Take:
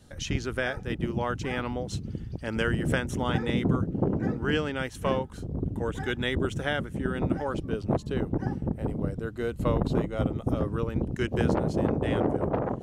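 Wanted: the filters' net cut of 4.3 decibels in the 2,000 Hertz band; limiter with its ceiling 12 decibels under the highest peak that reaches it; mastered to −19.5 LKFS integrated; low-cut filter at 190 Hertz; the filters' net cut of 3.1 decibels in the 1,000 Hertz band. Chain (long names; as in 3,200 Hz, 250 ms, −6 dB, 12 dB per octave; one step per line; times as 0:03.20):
high-pass filter 190 Hz
parametric band 1,000 Hz −3 dB
parametric band 2,000 Hz −4.5 dB
level +15 dB
brickwall limiter −8.5 dBFS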